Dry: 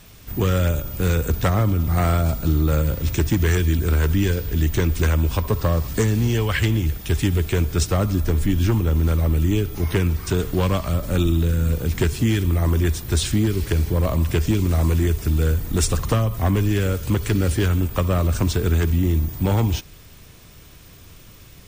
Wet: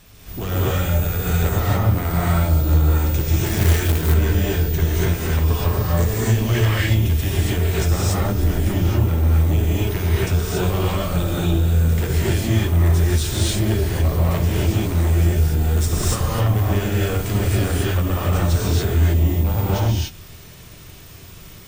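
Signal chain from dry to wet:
soft clipping −19 dBFS, distortion −12 dB
reverb whose tail is shaped and stops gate 310 ms rising, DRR −7 dB
0:03.46–0:04.14: log-companded quantiser 4 bits
level −3 dB

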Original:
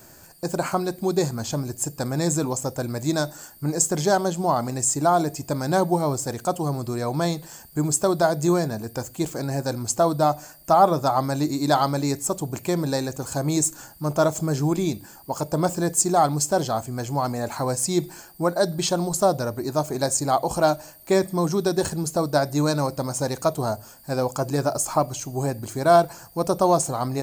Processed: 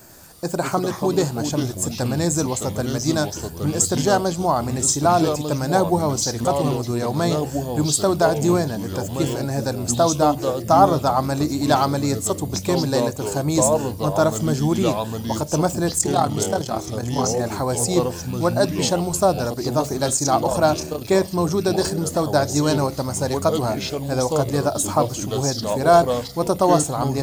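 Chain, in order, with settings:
0:15.98–0:17.40: amplitude modulation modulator 38 Hz, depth 60%
delay with pitch and tempo change per echo 93 ms, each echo −4 semitones, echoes 3, each echo −6 dB
level +2 dB

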